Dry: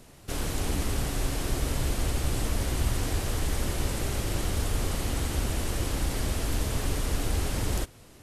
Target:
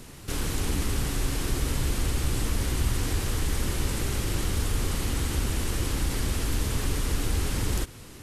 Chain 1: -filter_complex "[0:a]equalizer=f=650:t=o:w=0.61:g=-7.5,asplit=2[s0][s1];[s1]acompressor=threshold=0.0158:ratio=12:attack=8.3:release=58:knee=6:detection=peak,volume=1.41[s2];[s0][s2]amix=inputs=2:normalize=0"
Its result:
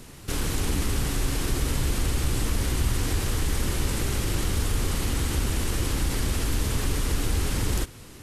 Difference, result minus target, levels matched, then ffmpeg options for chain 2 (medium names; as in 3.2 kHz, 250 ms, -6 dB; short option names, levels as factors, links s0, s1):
compression: peak gain reduction -7 dB
-filter_complex "[0:a]equalizer=f=650:t=o:w=0.61:g=-7.5,asplit=2[s0][s1];[s1]acompressor=threshold=0.00668:ratio=12:attack=8.3:release=58:knee=6:detection=peak,volume=1.41[s2];[s0][s2]amix=inputs=2:normalize=0"